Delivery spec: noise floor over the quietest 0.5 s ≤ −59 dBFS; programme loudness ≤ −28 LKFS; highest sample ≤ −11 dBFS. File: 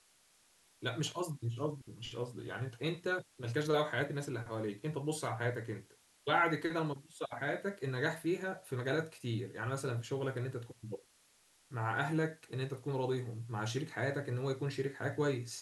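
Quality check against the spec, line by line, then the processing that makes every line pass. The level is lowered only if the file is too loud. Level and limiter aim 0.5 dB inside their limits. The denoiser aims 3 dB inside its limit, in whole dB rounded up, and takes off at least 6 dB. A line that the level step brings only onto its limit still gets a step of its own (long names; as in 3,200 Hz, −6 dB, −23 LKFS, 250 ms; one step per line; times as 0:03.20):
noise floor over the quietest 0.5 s −68 dBFS: in spec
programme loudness −37.5 LKFS: in spec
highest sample −17.5 dBFS: in spec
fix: no processing needed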